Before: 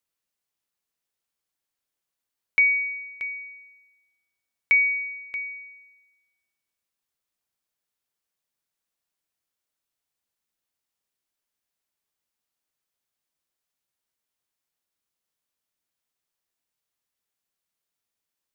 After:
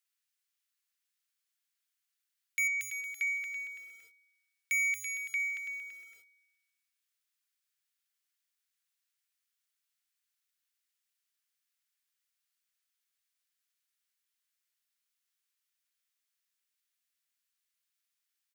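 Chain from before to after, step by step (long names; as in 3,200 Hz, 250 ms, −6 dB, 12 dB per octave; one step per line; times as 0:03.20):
high-pass filter 1,400 Hz 24 dB per octave
0:02.67–0:03.14: downward compressor 20 to 1, threshold −28 dBFS, peak gain reduction 9 dB
soft clipping −28 dBFS, distortion −4 dB
single-tap delay 333 ms −9 dB
feedback echo at a low word length 230 ms, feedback 35%, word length 10 bits, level −3 dB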